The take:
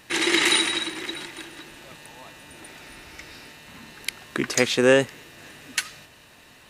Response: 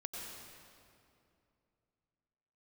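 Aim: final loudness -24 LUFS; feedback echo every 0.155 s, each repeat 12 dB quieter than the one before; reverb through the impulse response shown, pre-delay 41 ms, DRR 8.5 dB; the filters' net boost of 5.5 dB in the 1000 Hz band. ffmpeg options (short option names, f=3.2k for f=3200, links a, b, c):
-filter_complex "[0:a]equalizer=f=1k:t=o:g=7,aecho=1:1:155|310|465:0.251|0.0628|0.0157,asplit=2[a][b];[1:a]atrim=start_sample=2205,adelay=41[c];[b][c]afir=irnorm=-1:irlink=0,volume=-8dB[d];[a][d]amix=inputs=2:normalize=0,volume=-3dB"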